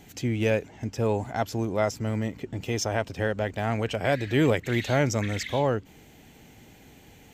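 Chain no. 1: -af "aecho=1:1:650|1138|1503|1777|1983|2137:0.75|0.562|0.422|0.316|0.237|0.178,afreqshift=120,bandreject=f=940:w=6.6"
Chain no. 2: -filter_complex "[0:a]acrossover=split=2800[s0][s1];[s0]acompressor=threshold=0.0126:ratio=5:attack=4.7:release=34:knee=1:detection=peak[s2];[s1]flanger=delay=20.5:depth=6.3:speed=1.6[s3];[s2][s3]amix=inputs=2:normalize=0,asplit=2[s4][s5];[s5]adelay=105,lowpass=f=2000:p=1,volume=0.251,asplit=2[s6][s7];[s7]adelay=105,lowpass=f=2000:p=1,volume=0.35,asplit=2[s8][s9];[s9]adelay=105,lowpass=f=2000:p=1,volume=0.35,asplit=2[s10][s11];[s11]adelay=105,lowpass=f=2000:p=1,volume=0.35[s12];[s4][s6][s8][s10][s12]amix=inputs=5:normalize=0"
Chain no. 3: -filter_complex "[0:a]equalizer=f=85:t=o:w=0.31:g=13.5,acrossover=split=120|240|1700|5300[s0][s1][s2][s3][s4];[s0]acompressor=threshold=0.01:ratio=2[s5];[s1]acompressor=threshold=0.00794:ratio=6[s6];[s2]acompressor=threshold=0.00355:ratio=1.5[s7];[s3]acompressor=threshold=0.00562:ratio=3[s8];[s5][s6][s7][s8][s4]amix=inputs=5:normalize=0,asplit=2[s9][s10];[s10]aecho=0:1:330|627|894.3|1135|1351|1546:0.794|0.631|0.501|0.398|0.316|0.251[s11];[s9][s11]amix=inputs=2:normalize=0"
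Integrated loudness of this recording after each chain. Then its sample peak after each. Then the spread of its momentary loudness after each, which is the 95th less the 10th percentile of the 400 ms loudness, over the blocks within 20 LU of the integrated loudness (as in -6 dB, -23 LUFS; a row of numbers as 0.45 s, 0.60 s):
-24.5 LUFS, -37.5 LUFS, -30.5 LUFS; -8.5 dBFS, -20.5 dBFS, -15.5 dBFS; 6 LU, 17 LU, 6 LU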